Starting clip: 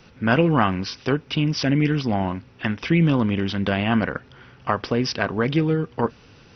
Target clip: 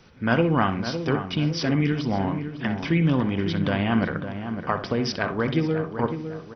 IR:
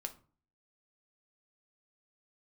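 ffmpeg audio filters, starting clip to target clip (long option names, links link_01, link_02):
-filter_complex "[0:a]bandreject=frequency=2700:width=13,asplit=2[link_01][link_02];[link_02]adelay=556,lowpass=frequency=1600:poles=1,volume=-8.5dB,asplit=2[link_03][link_04];[link_04]adelay=556,lowpass=frequency=1600:poles=1,volume=0.45,asplit=2[link_05][link_06];[link_06]adelay=556,lowpass=frequency=1600:poles=1,volume=0.45,asplit=2[link_07][link_08];[link_08]adelay=556,lowpass=frequency=1600:poles=1,volume=0.45,asplit=2[link_09][link_10];[link_10]adelay=556,lowpass=frequency=1600:poles=1,volume=0.45[link_11];[link_01][link_03][link_05][link_07][link_09][link_11]amix=inputs=6:normalize=0,asplit=2[link_12][link_13];[1:a]atrim=start_sample=2205,lowpass=3600,adelay=61[link_14];[link_13][link_14]afir=irnorm=-1:irlink=0,volume=-8.5dB[link_15];[link_12][link_15]amix=inputs=2:normalize=0,volume=-3dB"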